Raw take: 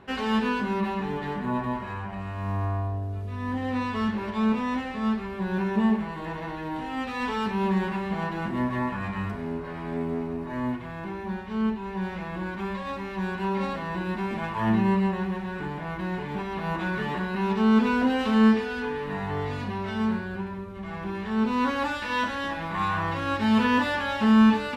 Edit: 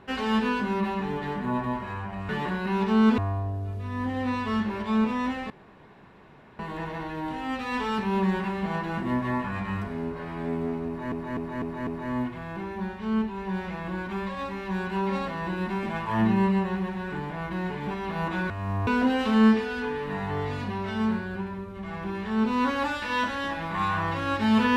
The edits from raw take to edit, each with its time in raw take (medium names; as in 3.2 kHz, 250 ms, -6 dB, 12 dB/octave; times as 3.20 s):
2.29–2.66 s: swap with 16.98–17.87 s
4.98–6.07 s: room tone
10.35–10.60 s: loop, 5 plays